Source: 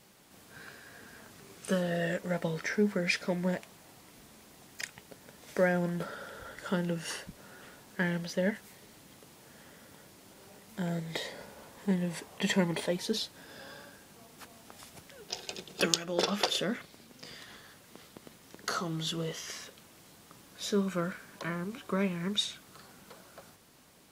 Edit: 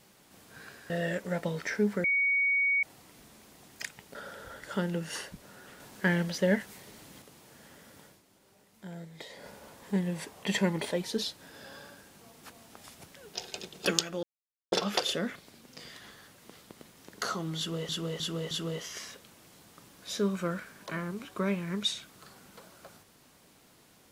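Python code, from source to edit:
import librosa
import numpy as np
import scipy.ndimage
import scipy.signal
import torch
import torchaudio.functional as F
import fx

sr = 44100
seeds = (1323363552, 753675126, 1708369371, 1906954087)

y = fx.edit(x, sr, fx.cut(start_s=0.9, length_s=0.99),
    fx.bleep(start_s=3.03, length_s=0.79, hz=2240.0, db=-23.5),
    fx.cut(start_s=5.14, length_s=0.96),
    fx.clip_gain(start_s=7.75, length_s=1.42, db=4.0),
    fx.fade_down_up(start_s=9.98, length_s=1.46, db=-9.5, fade_s=0.2),
    fx.insert_silence(at_s=16.18, length_s=0.49),
    fx.repeat(start_s=19.04, length_s=0.31, count=4), tone=tone)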